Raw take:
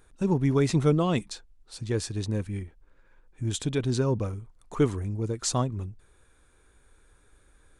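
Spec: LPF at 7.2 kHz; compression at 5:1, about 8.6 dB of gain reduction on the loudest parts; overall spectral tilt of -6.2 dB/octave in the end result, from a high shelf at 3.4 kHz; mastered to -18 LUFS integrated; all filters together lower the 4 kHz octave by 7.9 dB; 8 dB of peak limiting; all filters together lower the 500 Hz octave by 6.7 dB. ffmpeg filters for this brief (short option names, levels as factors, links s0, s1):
-af "lowpass=7200,equalizer=f=500:t=o:g=-8.5,highshelf=f=3400:g=-4.5,equalizer=f=4000:t=o:g=-6,acompressor=threshold=0.0316:ratio=5,volume=10.6,alimiter=limit=0.398:level=0:latency=1"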